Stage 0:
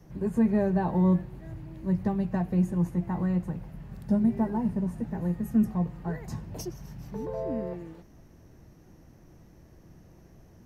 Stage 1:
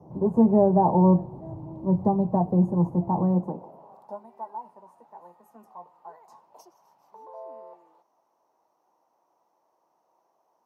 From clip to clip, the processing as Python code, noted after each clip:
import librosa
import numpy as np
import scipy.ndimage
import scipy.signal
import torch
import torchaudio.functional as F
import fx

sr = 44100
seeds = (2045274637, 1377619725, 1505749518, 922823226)

y = fx.curve_eq(x, sr, hz=(120.0, 950.0, 1700.0, 4200.0), db=(0, 12, -22, -16))
y = fx.filter_sweep_highpass(y, sr, from_hz=98.0, to_hz=1700.0, start_s=3.15, end_s=4.27, q=1.1)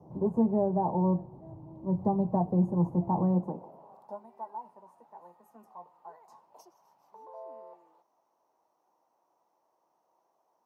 y = fx.rider(x, sr, range_db=10, speed_s=0.5)
y = y * librosa.db_to_amplitude(-5.5)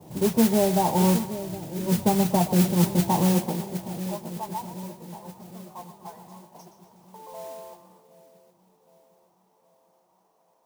y = fx.echo_split(x, sr, split_hz=600.0, low_ms=767, high_ms=122, feedback_pct=52, wet_db=-11)
y = fx.mod_noise(y, sr, seeds[0], snr_db=12)
y = y * librosa.db_to_amplitude(5.5)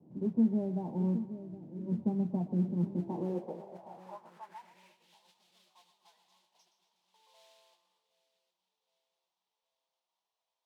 y = fx.filter_sweep_bandpass(x, sr, from_hz=240.0, to_hz=3500.0, start_s=2.89, end_s=5.19, q=2.3)
y = y * librosa.db_to_amplitude(-5.5)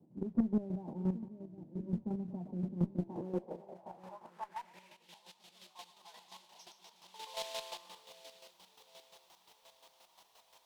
y = fx.recorder_agc(x, sr, target_db=-24.0, rise_db_per_s=6.2, max_gain_db=30)
y = fx.chopper(y, sr, hz=5.7, depth_pct=60, duty_pct=30)
y = fx.cheby_harmonics(y, sr, harmonics=(2, 7), levels_db=(-17, -29), full_scale_db=-18.5)